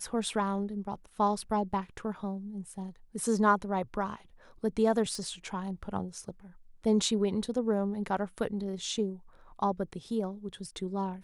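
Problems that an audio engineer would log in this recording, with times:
5.15 s: pop

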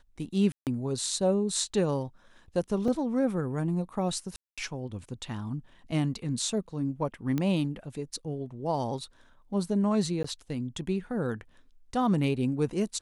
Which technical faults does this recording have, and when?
0.52–0.67 s: dropout 148 ms
2.88 s: dropout 2.8 ms
4.36–4.58 s: dropout 216 ms
7.38 s: pop -17 dBFS
10.23–10.24 s: dropout 14 ms

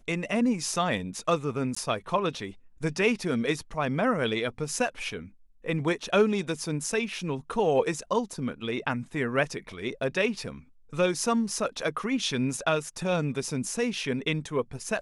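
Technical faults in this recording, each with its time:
1.75–1.76 s: dropout 15 ms

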